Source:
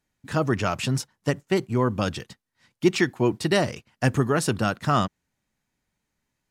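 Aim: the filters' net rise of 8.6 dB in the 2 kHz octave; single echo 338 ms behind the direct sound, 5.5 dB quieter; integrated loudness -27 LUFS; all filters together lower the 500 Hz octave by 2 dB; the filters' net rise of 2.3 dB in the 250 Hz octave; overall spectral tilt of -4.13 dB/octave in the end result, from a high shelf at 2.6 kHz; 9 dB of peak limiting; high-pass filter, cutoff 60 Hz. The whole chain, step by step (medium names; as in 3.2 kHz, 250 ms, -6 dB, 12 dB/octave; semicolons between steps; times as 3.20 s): high-pass 60 Hz; peaking EQ 250 Hz +5 dB; peaking EQ 500 Hz -6 dB; peaking EQ 2 kHz +7.5 dB; treble shelf 2.6 kHz +8 dB; peak limiter -9.5 dBFS; delay 338 ms -5.5 dB; trim -4 dB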